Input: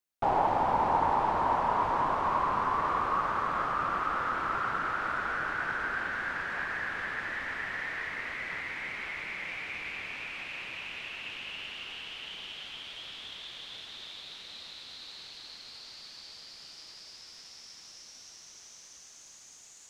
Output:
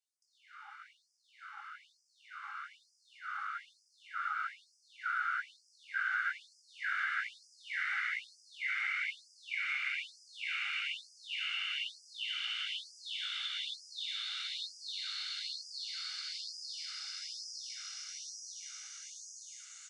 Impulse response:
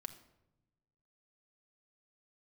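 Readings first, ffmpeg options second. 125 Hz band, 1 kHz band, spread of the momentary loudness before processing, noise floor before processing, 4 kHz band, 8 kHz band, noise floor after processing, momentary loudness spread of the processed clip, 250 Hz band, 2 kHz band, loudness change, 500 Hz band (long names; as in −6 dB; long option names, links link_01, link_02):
below −40 dB, −15.0 dB, 19 LU, −53 dBFS, +3.5 dB, +4.0 dB, −73 dBFS, 15 LU, below −40 dB, −2.5 dB, −6.0 dB, below −40 dB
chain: -filter_complex "[0:a]asplit=2[link_01][link_02];[link_02]aecho=0:1:680|1360|2040|2720:0.0794|0.0453|0.0258|0.0147[link_03];[link_01][link_03]amix=inputs=2:normalize=0,aresample=22050,aresample=44100,flanger=delay=16.5:depth=5:speed=0.97,aecho=1:1:1.4:0.7,acompressor=threshold=-45dB:ratio=3,asuperstop=centerf=940:order=4:qfactor=2.1,dynaudnorm=framelen=710:gausssize=13:maxgain=7dB,equalizer=frequency=680:width=0.33:gain=7,afftfilt=real='re*gte(b*sr/1024,810*pow(4700/810,0.5+0.5*sin(2*PI*1.1*pts/sr)))':imag='im*gte(b*sr/1024,810*pow(4700/810,0.5+0.5*sin(2*PI*1.1*pts/sr)))':win_size=1024:overlap=0.75"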